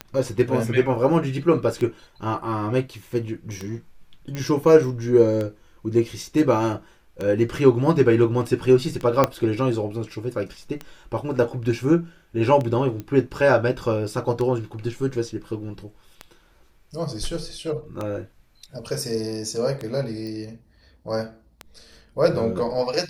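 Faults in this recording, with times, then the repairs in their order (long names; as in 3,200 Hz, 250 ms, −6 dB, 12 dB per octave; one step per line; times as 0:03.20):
scratch tick 33 1/3 rpm −16 dBFS
0:04.35: click −17 dBFS
0:09.24: click −4 dBFS
0:13.00: click −19 dBFS
0:20.27: click −24 dBFS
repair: click removal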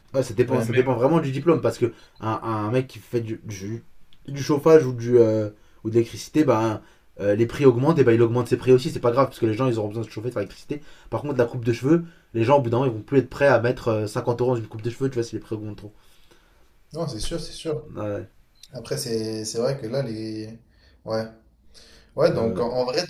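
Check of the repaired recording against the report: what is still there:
0:09.24: click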